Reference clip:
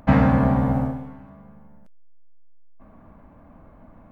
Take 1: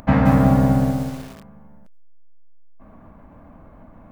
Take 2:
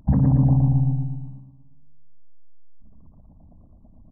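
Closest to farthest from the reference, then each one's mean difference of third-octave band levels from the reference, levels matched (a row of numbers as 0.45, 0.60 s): 1, 2; 3.0, 7.5 dB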